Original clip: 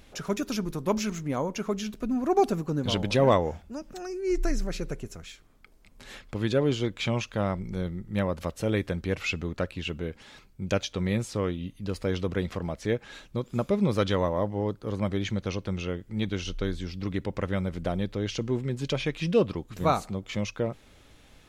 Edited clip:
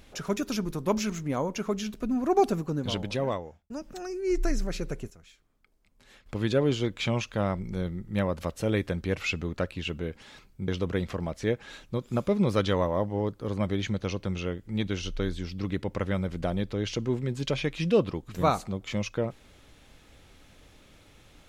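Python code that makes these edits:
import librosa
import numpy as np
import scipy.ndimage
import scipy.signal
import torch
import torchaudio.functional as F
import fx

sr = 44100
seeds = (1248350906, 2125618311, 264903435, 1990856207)

y = fx.edit(x, sr, fx.fade_out_span(start_s=2.56, length_s=1.14),
    fx.clip_gain(start_s=5.1, length_s=1.16, db=-11.0),
    fx.cut(start_s=10.68, length_s=1.42), tone=tone)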